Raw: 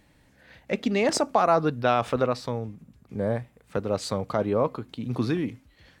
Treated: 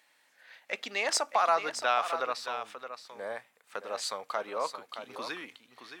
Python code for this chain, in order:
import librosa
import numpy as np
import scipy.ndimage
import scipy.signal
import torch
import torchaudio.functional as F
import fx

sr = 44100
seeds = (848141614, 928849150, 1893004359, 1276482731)

y = scipy.signal.sosfilt(scipy.signal.butter(2, 970.0, 'highpass', fs=sr, output='sos'), x)
y = y + 10.0 ** (-9.5 / 20.0) * np.pad(y, (int(620 * sr / 1000.0), 0))[:len(y)]